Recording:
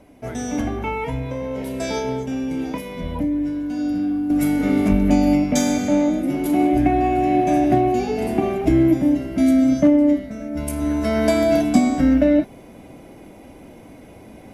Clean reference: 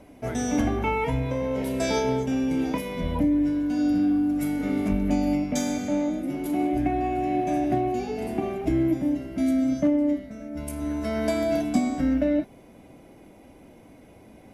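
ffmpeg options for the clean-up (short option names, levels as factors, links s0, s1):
-af "asetnsamples=n=441:p=0,asendcmd='4.3 volume volume -7.5dB',volume=1"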